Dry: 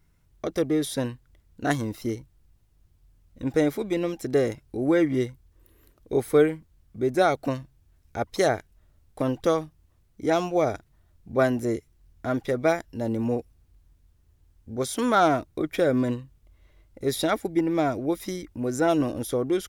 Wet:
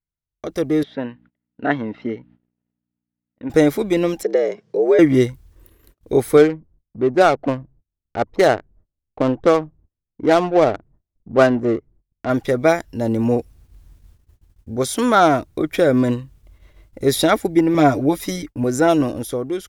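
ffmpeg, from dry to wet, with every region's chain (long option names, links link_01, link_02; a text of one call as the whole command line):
ffmpeg -i in.wav -filter_complex "[0:a]asettb=1/sr,asplit=3[link_01][link_02][link_03];[link_01]atrim=end=0.834[link_04];[link_02]atrim=start=0.83:end=3.5,asetpts=PTS-STARTPTS,afade=type=in:duration=0.004:curve=qsin,afade=type=out:start_time=2.666:duration=0.004:curve=qsin,acompressor=mode=upward:threshold=-48dB:ratio=2.5:attack=3.2:release=140:knee=2.83:detection=peak,aeval=exprs='val(0)+0.00355*(sin(2*PI*60*n/s)+sin(2*PI*2*60*n/s)/2+sin(2*PI*3*60*n/s)/3+sin(2*PI*4*60*n/s)/4+sin(2*PI*5*60*n/s)/5)':channel_layout=same,highpass=300,equalizer=frequency=340:width_type=q:width=4:gain=-9,equalizer=frequency=510:width_type=q:width=4:gain=-7,equalizer=frequency=730:width_type=q:width=4:gain=-5,equalizer=frequency=1100:width_type=q:width=4:gain=-10,equalizer=frequency=1600:width_type=q:width=4:gain=-5,equalizer=frequency=2300:width_type=q:width=4:gain=-6,lowpass=frequency=2400:width=0.5412,lowpass=frequency=2400:width=1.3066[link_05];[link_03]atrim=start=3.496[link_06];[link_04][link_05]acrossfade=duration=0.004:curve1=hsin:curve2=qsin[link_07];[link_07][link_06]acrossfade=duration=0.004:curve1=qsin:curve2=hsin,asettb=1/sr,asplit=3[link_08][link_09][link_10];[link_08]atrim=end=4.234[link_11];[link_09]atrim=start=4.23:end=4.99,asetpts=PTS-STARTPTS,afade=type=in:duration=0.004:curve=qsin,afade=type=out:start_time=0.756:duration=0.004:curve=qsin,acrossover=split=330|1500|3400[link_12][link_13][link_14][link_15];[link_12]acompressor=threshold=-38dB:ratio=3[link_16];[link_13]acompressor=threshold=-29dB:ratio=3[link_17];[link_14]acompressor=threshold=-45dB:ratio=3[link_18];[link_15]acompressor=threshold=-57dB:ratio=3[link_19];[link_16][link_17][link_18][link_19]amix=inputs=4:normalize=0,afreqshift=76,highpass=250,equalizer=frequency=270:width_type=q:width=4:gain=-10,equalizer=frequency=430:width_type=q:width=4:gain=8,equalizer=frequency=870:width_type=q:width=4:gain=-6,equalizer=frequency=1400:width_type=q:width=4:gain=-5,equalizer=frequency=2600:width_type=q:width=4:gain=-6,equalizer=frequency=4000:width_type=q:width=4:gain=-5,lowpass=frequency=6100:width=0.5412,lowpass=frequency=6100:width=1.3066[link_20];[link_10]atrim=start=4.986[link_21];[link_11][link_20]acrossfade=duration=0.004:curve1=hsin:curve2=qsin[link_22];[link_22][link_21]acrossfade=duration=0.004:curve1=qsin:curve2=hsin,asettb=1/sr,asplit=3[link_23][link_24][link_25];[link_23]atrim=end=6.374[link_26];[link_24]atrim=start=6.37:end=12.3,asetpts=PTS-STARTPTS,afade=type=in:duration=0.004:curve=qsin,afade=type=out:start_time=5.926:duration=0.004:curve=qsin,adynamicsmooth=sensitivity=2.5:basefreq=600,equalizer=frequency=61:width=0.66:gain=-8[link_27];[link_25]atrim=start=12.296[link_28];[link_26][link_27]acrossfade=duration=0.004:curve1=hsin:curve2=qsin[link_29];[link_29][link_28]acrossfade=duration=0.004:curve1=qsin:curve2=hsin,asettb=1/sr,asplit=3[link_30][link_31][link_32];[link_30]atrim=end=17.744[link_33];[link_31]atrim=start=17.74:end=18.64,asetpts=PTS-STARTPTS,afade=type=in:duration=0.004:curve=qsin,afade=type=out:start_time=0.896:duration=0.004:curve=qsin,agate=range=-33dB:threshold=-41dB:ratio=3:release=100:detection=peak,aecho=1:1:7:0.65,atrim=end_sample=39690[link_34];[link_32]atrim=start=18.636[link_35];[link_33][link_34]acrossfade=duration=0.004:curve1=hsin:curve2=qsin[link_36];[link_36][link_35]acrossfade=duration=0.004:curve1=qsin:curve2=hsin,dynaudnorm=framelen=180:gausssize=9:maxgain=16dB,agate=range=-27dB:threshold=-47dB:ratio=16:detection=peak,volume=-1dB" out.wav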